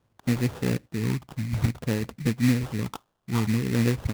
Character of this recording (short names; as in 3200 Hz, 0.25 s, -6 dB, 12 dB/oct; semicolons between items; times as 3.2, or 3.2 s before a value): a quantiser's noise floor 12-bit, dither triangular; phasing stages 4, 0.55 Hz, lowest notch 460–1800 Hz; aliases and images of a low sample rate 2200 Hz, jitter 20%; noise-modulated level